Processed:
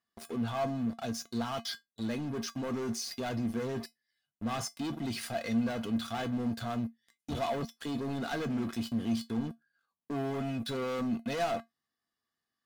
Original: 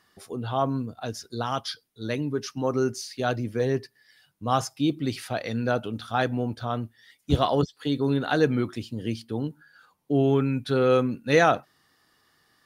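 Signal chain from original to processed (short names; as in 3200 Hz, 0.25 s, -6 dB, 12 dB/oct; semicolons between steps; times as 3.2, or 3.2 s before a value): sample leveller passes 5; limiter -16.5 dBFS, peak gain reduction 10 dB; resonator 230 Hz, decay 0.15 s, harmonics odd, mix 80%; gain -3.5 dB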